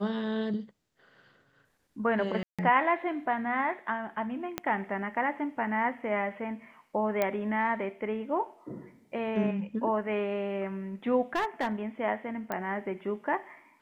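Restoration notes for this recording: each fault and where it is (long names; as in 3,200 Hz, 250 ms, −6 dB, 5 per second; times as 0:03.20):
0:02.43–0:02.59: drop-out 156 ms
0:04.58: click −15 dBFS
0:07.22: click −14 dBFS
0:11.35–0:11.72: clipping −24.5 dBFS
0:12.52: click −19 dBFS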